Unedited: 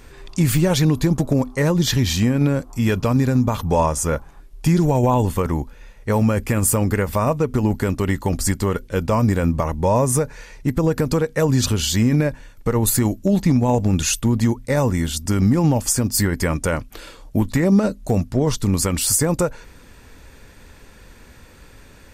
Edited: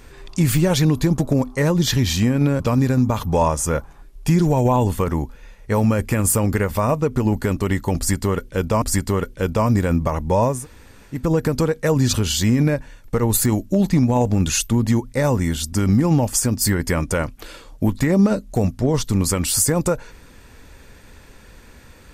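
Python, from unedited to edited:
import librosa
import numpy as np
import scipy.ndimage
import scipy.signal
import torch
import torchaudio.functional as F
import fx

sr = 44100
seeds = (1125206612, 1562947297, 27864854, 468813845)

y = fx.edit(x, sr, fx.cut(start_s=2.6, length_s=0.38),
    fx.repeat(start_s=8.35, length_s=0.85, count=2),
    fx.room_tone_fill(start_s=10.08, length_s=0.62, crossfade_s=0.24), tone=tone)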